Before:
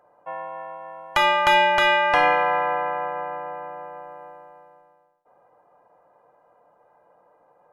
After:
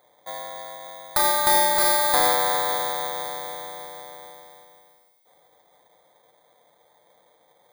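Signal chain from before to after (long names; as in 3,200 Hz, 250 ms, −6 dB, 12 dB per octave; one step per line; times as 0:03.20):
samples in bit-reversed order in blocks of 16 samples
delay with a high-pass on its return 550 ms, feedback 41%, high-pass 2,800 Hz, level −16 dB
level −1.5 dB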